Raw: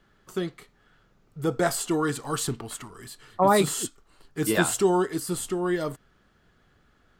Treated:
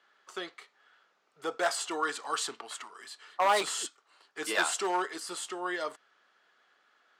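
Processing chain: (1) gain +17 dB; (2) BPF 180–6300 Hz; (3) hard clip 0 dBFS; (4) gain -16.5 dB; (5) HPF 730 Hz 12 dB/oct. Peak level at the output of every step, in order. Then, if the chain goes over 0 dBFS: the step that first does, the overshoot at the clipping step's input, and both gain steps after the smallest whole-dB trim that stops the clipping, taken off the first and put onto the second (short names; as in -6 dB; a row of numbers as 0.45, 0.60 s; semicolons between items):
+9.5, +8.5, 0.0, -16.5, -13.0 dBFS; step 1, 8.5 dB; step 1 +8 dB, step 4 -7.5 dB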